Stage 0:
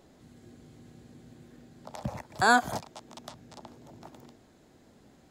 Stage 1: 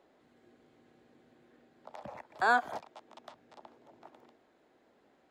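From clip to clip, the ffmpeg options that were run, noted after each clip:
-filter_complex "[0:a]acrossover=split=310 3400:gain=0.126 1 0.178[a][b][c];[a][b][c]amix=inputs=3:normalize=0,volume=-4dB"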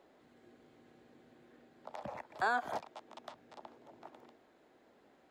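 -af "alimiter=limit=-24dB:level=0:latency=1:release=120,volume=1.5dB"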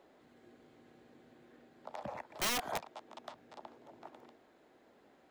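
-af "aeval=exprs='(mod(26.6*val(0)+1,2)-1)/26.6':c=same,volume=1dB"

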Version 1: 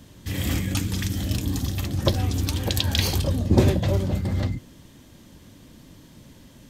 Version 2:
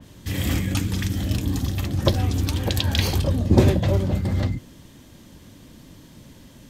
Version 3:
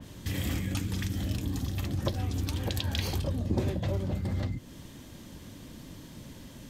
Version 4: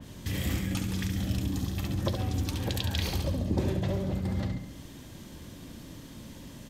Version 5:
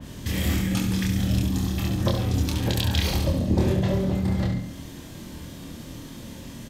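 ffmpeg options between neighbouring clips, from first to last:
-af "adynamicequalizer=threshold=0.00708:dfrequency=3300:dqfactor=0.7:tfrequency=3300:tqfactor=0.7:attack=5:release=100:ratio=0.375:range=2.5:mode=cutabove:tftype=highshelf,volume=2dB"
-af "acompressor=threshold=-32dB:ratio=2.5"
-af "aecho=1:1:69|138|207|276|345|414|483:0.447|0.241|0.13|0.0703|0.038|0.0205|0.0111"
-filter_complex "[0:a]asplit=2[a][b];[b]adelay=26,volume=-3dB[c];[a][c]amix=inputs=2:normalize=0,volume=4.5dB"

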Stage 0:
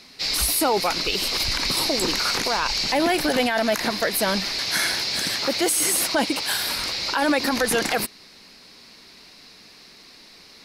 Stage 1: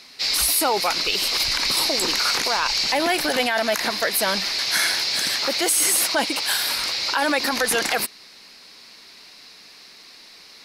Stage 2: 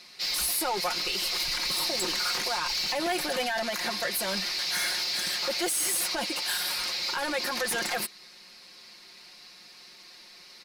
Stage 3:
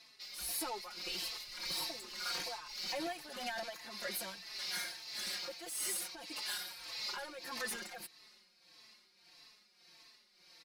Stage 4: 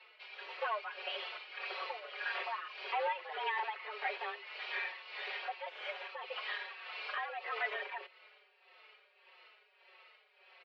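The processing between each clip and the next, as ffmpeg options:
-af "lowshelf=f=390:g=-10.5,volume=2.5dB"
-af "asoftclip=type=tanh:threshold=-19.5dB,aecho=1:1:5.6:0.65,volume=-6dB"
-filter_complex "[0:a]tremolo=f=1.7:d=0.7,asplit=2[a][b];[b]adelay=4,afreqshift=-1.6[c];[a][c]amix=inputs=2:normalize=1,volume=-6.5dB"
-af "aeval=exprs='(tanh(50.1*val(0)+0.4)-tanh(0.4))/50.1':c=same,highpass=f=170:t=q:w=0.5412,highpass=f=170:t=q:w=1.307,lowpass=f=2.9k:t=q:w=0.5176,lowpass=f=2.9k:t=q:w=0.7071,lowpass=f=2.9k:t=q:w=1.932,afreqshift=210,volume=8dB"

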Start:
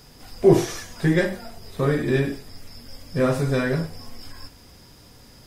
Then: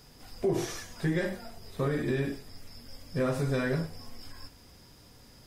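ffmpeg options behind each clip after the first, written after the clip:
-af "alimiter=limit=-13.5dB:level=0:latency=1:release=78,volume=-6dB"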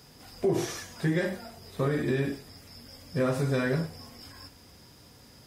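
-af "highpass=62,volume=2dB"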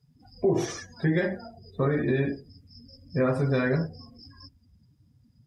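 -af "afftdn=nr=29:nf=-42,volume=2.5dB"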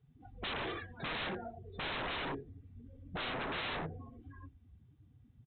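-af "aecho=1:1:2.6:0.43,aresample=8000,aeval=exprs='0.0237*(abs(mod(val(0)/0.0237+3,4)-2)-1)':c=same,aresample=44100,volume=-1dB"

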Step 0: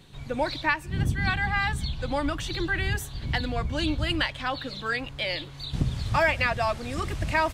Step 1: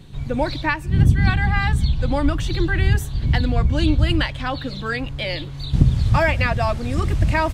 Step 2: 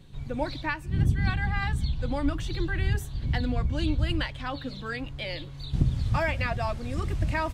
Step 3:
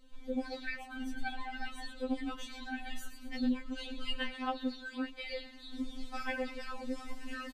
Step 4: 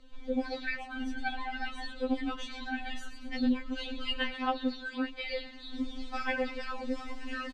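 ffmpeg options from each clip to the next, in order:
-af "lowshelf=f=320:g=11,volume=2dB"
-af "flanger=delay=1.8:depth=2.3:regen=84:speed=0.73:shape=sinusoidal,volume=-4dB"
-filter_complex "[0:a]asplit=6[a][b][c][d][e][f];[b]adelay=112,afreqshift=-89,volume=-10dB[g];[c]adelay=224,afreqshift=-178,volume=-16.6dB[h];[d]adelay=336,afreqshift=-267,volume=-23.1dB[i];[e]adelay=448,afreqshift=-356,volume=-29.7dB[j];[f]adelay=560,afreqshift=-445,volume=-36.2dB[k];[a][g][h][i][j][k]amix=inputs=6:normalize=0,afftfilt=real='re*3.46*eq(mod(b,12),0)':imag='im*3.46*eq(mod(b,12),0)':win_size=2048:overlap=0.75,volume=-4.5dB"
-filter_complex "[0:a]acrossover=split=130[a][b];[a]asoftclip=type=tanh:threshold=-38dB[c];[b]highpass=180,lowpass=5.4k[d];[c][d]amix=inputs=2:normalize=0,volume=5dB"

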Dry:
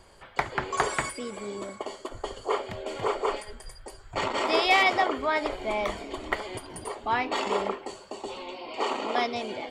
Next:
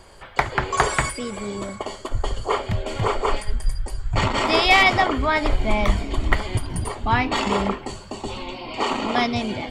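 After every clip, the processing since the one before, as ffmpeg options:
-af "asubboost=boost=8.5:cutoff=150,volume=7dB"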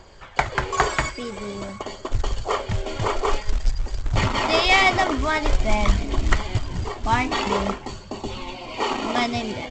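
-af "aresample=16000,acrusher=bits=4:mode=log:mix=0:aa=0.000001,aresample=44100,aphaser=in_gain=1:out_gain=1:delay=3.3:decay=0.26:speed=0.49:type=triangular,volume=-1.5dB"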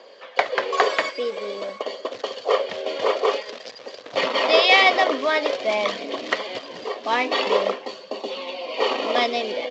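-af "highpass=f=320:w=0.5412,highpass=f=320:w=1.3066,equalizer=f=350:t=q:w=4:g=-9,equalizer=f=510:t=q:w=4:g=9,equalizer=f=870:t=q:w=4:g=-8,equalizer=f=1.4k:t=q:w=4:g=-8,equalizer=f=2.2k:t=q:w=4:g=-3,lowpass=f=4.9k:w=0.5412,lowpass=f=4.9k:w=1.3066,volume=4.5dB"

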